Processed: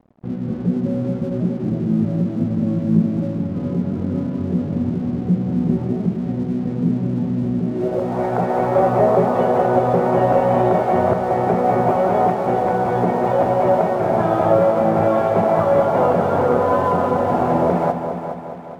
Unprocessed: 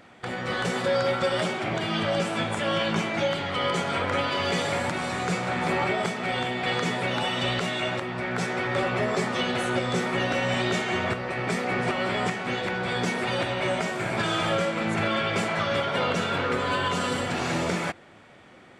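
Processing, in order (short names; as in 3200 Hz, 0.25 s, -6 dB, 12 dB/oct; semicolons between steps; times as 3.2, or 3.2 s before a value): low-pass sweep 240 Hz -> 760 Hz, 7.62–8.15; crossover distortion -50 dBFS; multi-head echo 0.208 s, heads first and second, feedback 52%, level -11.5 dB; gain +7.5 dB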